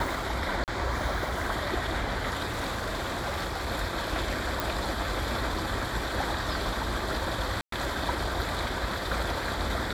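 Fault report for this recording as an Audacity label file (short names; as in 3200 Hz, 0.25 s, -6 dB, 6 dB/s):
0.640000	0.680000	gap 38 ms
2.470000	3.690000	clipped -27.5 dBFS
4.600000	4.600000	pop
7.610000	7.720000	gap 0.113 s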